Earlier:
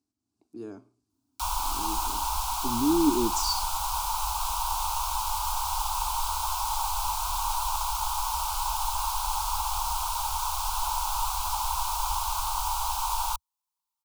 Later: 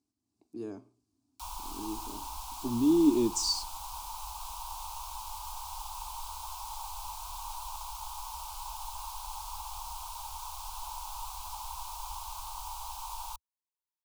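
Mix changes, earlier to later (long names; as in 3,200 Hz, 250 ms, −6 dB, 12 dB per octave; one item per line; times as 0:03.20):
background −11.5 dB
master: add parametric band 1,400 Hz −8 dB 0.26 octaves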